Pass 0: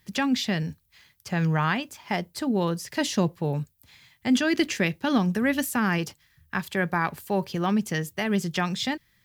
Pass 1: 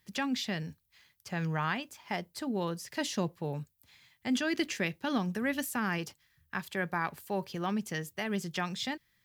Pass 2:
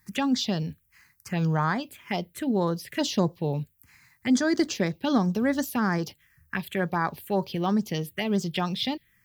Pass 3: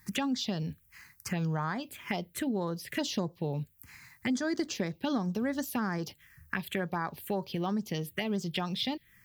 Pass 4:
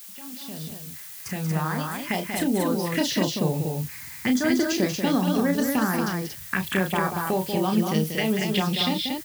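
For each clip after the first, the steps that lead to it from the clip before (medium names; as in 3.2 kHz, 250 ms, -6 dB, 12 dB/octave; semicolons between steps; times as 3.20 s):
bass shelf 280 Hz -4 dB; trim -6.5 dB
touch-sensitive phaser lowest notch 530 Hz, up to 2.8 kHz, full sweep at -27.5 dBFS; trim +8.5 dB
compression 3:1, threshold -37 dBFS, peak gain reduction 14.5 dB; trim +4.5 dB
fade-in on the opening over 2.41 s; added noise blue -50 dBFS; loudspeakers at several distances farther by 11 m -6 dB, 64 m -7 dB, 80 m -4 dB; trim +6.5 dB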